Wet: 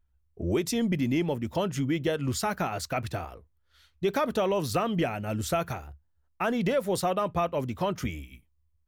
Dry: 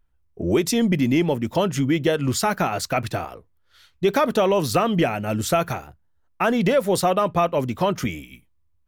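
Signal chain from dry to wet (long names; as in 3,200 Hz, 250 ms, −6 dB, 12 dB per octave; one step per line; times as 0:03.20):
parametric band 70 Hz +12.5 dB 0.62 octaves
level −7.5 dB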